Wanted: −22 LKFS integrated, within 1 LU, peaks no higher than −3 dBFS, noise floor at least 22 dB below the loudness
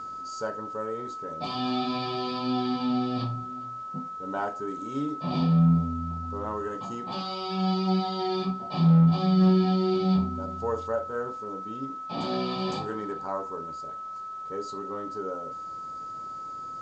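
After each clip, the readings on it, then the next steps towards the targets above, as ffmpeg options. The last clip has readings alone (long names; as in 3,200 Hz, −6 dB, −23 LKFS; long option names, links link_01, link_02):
interfering tone 1,300 Hz; level of the tone −35 dBFS; integrated loudness −28.5 LKFS; sample peak −13.0 dBFS; target loudness −22.0 LKFS
→ -af "bandreject=frequency=1300:width=30"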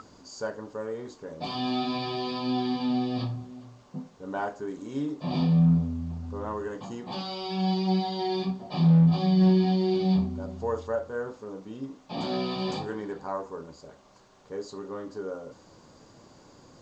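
interfering tone none found; integrated loudness −28.0 LKFS; sample peak −14.0 dBFS; target loudness −22.0 LKFS
→ -af "volume=6dB"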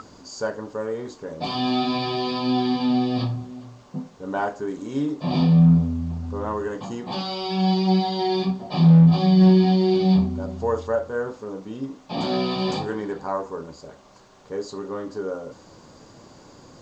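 integrated loudness −22.0 LKFS; sample peak −8.0 dBFS; background noise floor −50 dBFS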